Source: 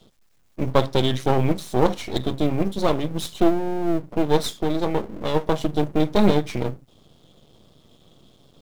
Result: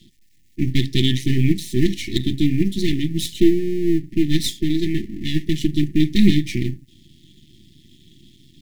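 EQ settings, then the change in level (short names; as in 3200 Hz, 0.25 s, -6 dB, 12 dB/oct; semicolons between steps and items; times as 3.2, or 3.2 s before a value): brick-wall FIR band-stop 380–1700 Hz; Butterworth band-stop 1600 Hz, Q 7.9; +5.0 dB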